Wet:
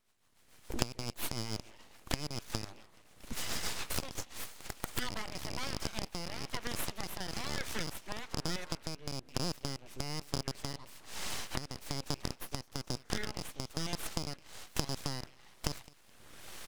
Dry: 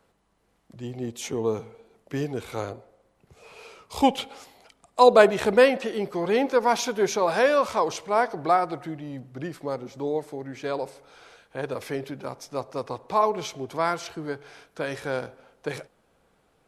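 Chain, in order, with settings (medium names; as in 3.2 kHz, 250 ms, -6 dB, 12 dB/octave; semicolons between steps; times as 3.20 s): rattle on loud lows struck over -35 dBFS, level -12 dBFS; recorder AGC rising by 34 dB/s; amplifier tone stack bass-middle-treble 5-5-5; compression 3:1, threshold -38 dBFS, peak gain reduction 17 dB; on a send: frequency-shifting echo 212 ms, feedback 42%, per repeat +60 Hz, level -23 dB; on the sum: rotary cabinet horn 7 Hz, later 1.1 Hz, at 3.80 s; full-wave rectifier; trim +6.5 dB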